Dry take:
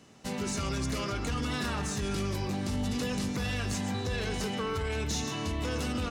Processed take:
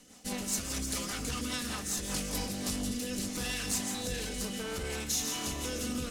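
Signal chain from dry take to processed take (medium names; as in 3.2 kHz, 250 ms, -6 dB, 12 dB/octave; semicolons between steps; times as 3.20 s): comb filter that takes the minimum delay 4 ms; peaking EQ 11 kHz +14 dB 1.9 oct; gain riding within 4 dB 0.5 s; rotary cabinet horn 5 Hz, later 0.65 Hz, at 2.11 s; feedback echo behind a high-pass 167 ms, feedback 69%, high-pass 5.3 kHz, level -8 dB; trim -2 dB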